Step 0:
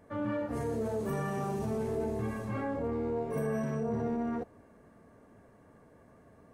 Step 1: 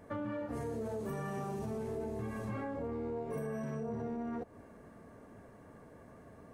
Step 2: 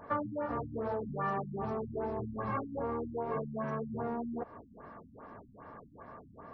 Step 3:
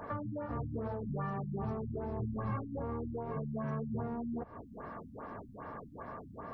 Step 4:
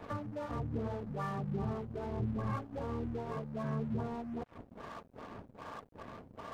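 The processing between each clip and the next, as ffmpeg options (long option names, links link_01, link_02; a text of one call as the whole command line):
ffmpeg -i in.wav -af "acompressor=threshold=-40dB:ratio=5,volume=3.5dB" out.wav
ffmpeg -i in.wav -af "equalizer=frequency=1100:width=1:gain=13.5,afftfilt=real='re*lt(b*sr/1024,260*pow(5900/260,0.5+0.5*sin(2*PI*2.5*pts/sr)))':imag='im*lt(b*sr/1024,260*pow(5900/260,0.5+0.5*sin(2*PI*2.5*pts/sr)))':win_size=1024:overlap=0.75" out.wav
ffmpeg -i in.wav -filter_complex "[0:a]acrossover=split=180[link_01][link_02];[link_02]acompressor=threshold=-47dB:ratio=4[link_03];[link_01][link_03]amix=inputs=2:normalize=0,volume=6dB" out.wav
ffmpeg -i in.wav -filter_complex "[0:a]acrossover=split=480[link_01][link_02];[link_01]aeval=exprs='val(0)*(1-0.5/2+0.5/2*cos(2*PI*1.3*n/s))':channel_layout=same[link_03];[link_02]aeval=exprs='val(0)*(1-0.5/2-0.5/2*cos(2*PI*1.3*n/s))':channel_layout=same[link_04];[link_03][link_04]amix=inputs=2:normalize=0,aeval=exprs='sgn(val(0))*max(abs(val(0))-0.002,0)':channel_layout=same,volume=3.5dB" out.wav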